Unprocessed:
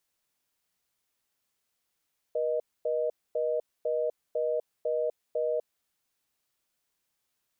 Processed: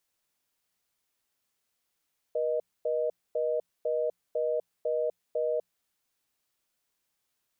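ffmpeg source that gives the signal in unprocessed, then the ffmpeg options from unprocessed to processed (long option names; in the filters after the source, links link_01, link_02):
-f lavfi -i "aevalsrc='0.0376*(sin(2*PI*480*t)+sin(2*PI*620*t))*clip(min(mod(t,0.5),0.25-mod(t,0.5))/0.005,0,1)':duration=3.28:sample_rate=44100"
-af "bandreject=frequency=60:width_type=h:width=6,bandreject=frequency=120:width_type=h:width=6,bandreject=frequency=180:width_type=h:width=6"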